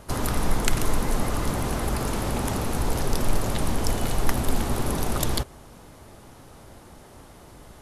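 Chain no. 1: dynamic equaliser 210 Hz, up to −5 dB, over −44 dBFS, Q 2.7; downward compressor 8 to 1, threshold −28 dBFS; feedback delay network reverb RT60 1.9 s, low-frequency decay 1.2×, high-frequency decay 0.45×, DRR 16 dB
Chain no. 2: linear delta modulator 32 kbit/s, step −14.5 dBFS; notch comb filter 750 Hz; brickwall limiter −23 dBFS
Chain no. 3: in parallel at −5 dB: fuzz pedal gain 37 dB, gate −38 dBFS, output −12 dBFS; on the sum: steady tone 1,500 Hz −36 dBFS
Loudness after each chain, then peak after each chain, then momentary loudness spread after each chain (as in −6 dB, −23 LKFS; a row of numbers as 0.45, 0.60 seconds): −35.5, −30.0, −19.5 LKFS; −16.0, −23.0, −3.0 dBFS; 14, 3, 19 LU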